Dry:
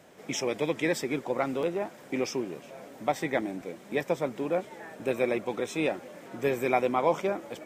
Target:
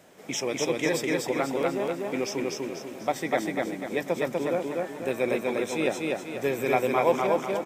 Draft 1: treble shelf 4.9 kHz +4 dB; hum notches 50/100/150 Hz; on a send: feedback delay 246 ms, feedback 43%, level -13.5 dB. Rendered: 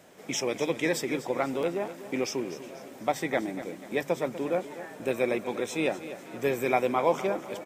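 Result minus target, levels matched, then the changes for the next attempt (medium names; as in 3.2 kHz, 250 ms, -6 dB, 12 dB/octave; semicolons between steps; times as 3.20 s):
echo-to-direct -11.5 dB
change: feedback delay 246 ms, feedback 43%, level -2 dB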